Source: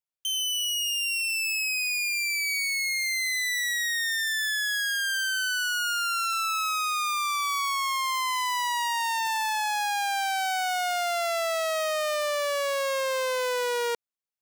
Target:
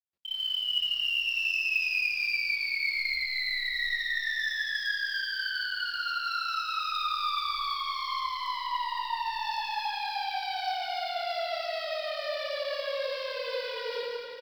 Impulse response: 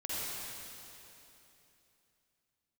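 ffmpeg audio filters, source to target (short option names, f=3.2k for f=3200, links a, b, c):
-filter_complex "[0:a]asettb=1/sr,asplit=3[a][b][c];[a]atrim=end=2.954[d];[b]atrim=start=2.95:end=3.67,asetpts=PTS-STARTPTS,afade=t=in:d=0.004:c=qsin,afade=t=out:st=0.716:d=0.004:c=qsin,highpass=980[e];[c]atrim=start=3.666[f];[d][e]acrossfade=d=0.004:c1=hsin:c2=qsin[g];[g][f]acrossfade=d=0.004:c1=qsin:c2=hsin,asettb=1/sr,asplit=3[h][i][j];[h]atrim=end=6.844[k];[i]atrim=start=6.84:end=7.38,asetpts=PTS-STARTPTS,afade=t=in:d=0.004:c=qsin,afade=t=out:st=0.536:d=0.004:c=qsin,adynamicequalizer=threshold=0.00708:dfrequency=1300:dqfactor=1.4:tfrequency=1300:tqfactor=1.4:attack=5:release=100:ratio=0.375:range=3.5:mode=boostabove:tftype=bell[l];[j]atrim=start=7.376[m];[k][l]acrossfade=d=0.004:c1=hsin:c2=qsin[n];[n][m]acrossfade=d=0.004:c1=qsin:c2=hsin,asoftclip=type=tanh:threshold=-32dB,tremolo=f=35:d=1,asettb=1/sr,asplit=3[o][p][q];[o]atrim=end=8.064[r];[p]atrim=start=8.06:end=9.16,asetpts=PTS-STARTPTS,afade=t=in:d=0.004:c=qsin,afade=t=out:st=1.096:d=0.004:c=qsin,asplit=2[s][t];[t]highpass=f=720:p=1,volume=10dB,asoftclip=type=tanh:threshold=-32dB[u];[s][u]amix=inputs=2:normalize=0,lowpass=f=2.9k:p=1,volume=-6dB[v];[q]atrim=start=9.156[w];[r][v]acrossfade=d=0.004:c1=hsin:c2=qsin[x];[x][w]acrossfade=d=0.004:c1=qsin:c2=hsin,crystalizer=i=4.5:c=0,aeval=exprs='0.251*(cos(1*acos(clip(val(0)/0.251,-1,1)))-cos(1*PI/2))+0.00708*(cos(2*acos(clip(val(0)/0.251,-1,1)))-cos(2*PI/2))':c=same,asplit=2[y][z];[z]adelay=263,lowpass=f=1.6k:p=1,volume=-11dB,asplit=2[aa][ab];[ab]adelay=263,lowpass=f=1.6k:p=1,volume=0.26,asplit=2[ac][ad];[ad]adelay=263,lowpass=f=1.6k:p=1,volume=0.26[ae];[y][aa][ac][ae]amix=inputs=4:normalize=0[af];[1:a]atrim=start_sample=2205,asetrate=52920,aresample=44100[ag];[af][ag]afir=irnorm=-1:irlink=0,aresample=11025,aresample=44100" -ar 44100 -c:a adpcm_ima_wav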